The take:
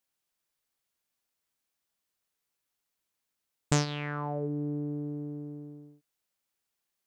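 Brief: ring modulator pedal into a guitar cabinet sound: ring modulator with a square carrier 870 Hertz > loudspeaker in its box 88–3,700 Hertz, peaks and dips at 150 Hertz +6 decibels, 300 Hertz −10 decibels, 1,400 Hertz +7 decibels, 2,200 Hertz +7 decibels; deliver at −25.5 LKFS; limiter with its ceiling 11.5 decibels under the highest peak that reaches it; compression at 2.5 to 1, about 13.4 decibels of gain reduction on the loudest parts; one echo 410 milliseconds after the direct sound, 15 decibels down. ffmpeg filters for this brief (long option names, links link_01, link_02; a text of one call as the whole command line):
ffmpeg -i in.wav -af "acompressor=threshold=-42dB:ratio=2.5,alimiter=level_in=9.5dB:limit=-24dB:level=0:latency=1,volume=-9.5dB,aecho=1:1:410:0.178,aeval=exprs='val(0)*sgn(sin(2*PI*870*n/s))':channel_layout=same,highpass=88,equalizer=frequency=150:width_type=q:width=4:gain=6,equalizer=frequency=300:width_type=q:width=4:gain=-10,equalizer=frequency=1400:width_type=q:width=4:gain=7,equalizer=frequency=2200:width_type=q:width=4:gain=7,lowpass=frequency=3700:width=0.5412,lowpass=frequency=3700:width=1.3066,volume=16dB" out.wav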